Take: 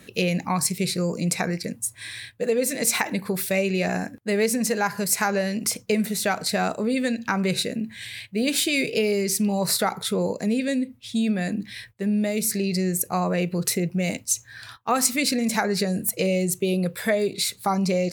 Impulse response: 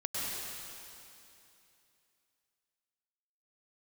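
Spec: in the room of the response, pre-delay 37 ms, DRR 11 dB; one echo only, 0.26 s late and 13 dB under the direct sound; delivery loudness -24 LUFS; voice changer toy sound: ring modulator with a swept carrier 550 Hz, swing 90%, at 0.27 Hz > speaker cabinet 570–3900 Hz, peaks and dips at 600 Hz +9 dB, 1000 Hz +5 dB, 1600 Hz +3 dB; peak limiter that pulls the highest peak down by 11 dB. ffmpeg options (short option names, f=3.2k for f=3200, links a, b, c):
-filter_complex "[0:a]alimiter=limit=-18dB:level=0:latency=1,aecho=1:1:260:0.224,asplit=2[a][b];[1:a]atrim=start_sample=2205,adelay=37[c];[b][c]afir=irnorm=-1:irlink=0,volume=-16.5dB[d];[a][d]amix=inputs=2:normalize=0,aeval=exprs='val(0)*sin(2*PI*550*n/s+550*0.9/0.27*sin(2*PI*0.27*n/s))':c=same,highpass=570,equalizer=f=600:t=q:w=4:g=9,equalizer=f=1k:t=q:w=4:g=5,equalizer=f=1.6k:t=q:w=4:g=3,lowpass=f=3.9k:w=0.5412,lowpass=f=3.9k:w=1.3066,volume=5dB"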